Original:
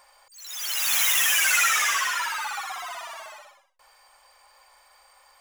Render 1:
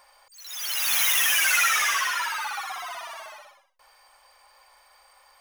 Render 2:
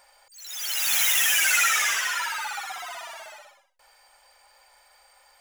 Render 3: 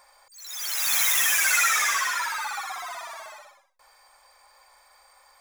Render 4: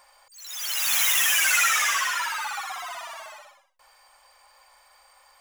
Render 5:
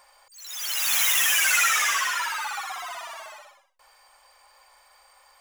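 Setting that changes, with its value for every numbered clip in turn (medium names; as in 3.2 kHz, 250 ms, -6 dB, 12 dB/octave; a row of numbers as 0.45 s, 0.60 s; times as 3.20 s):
band-stop, frequency: 7.4 kHz, 1.1 kHz, 2.9 kHz, 400 Hz, 160 Hz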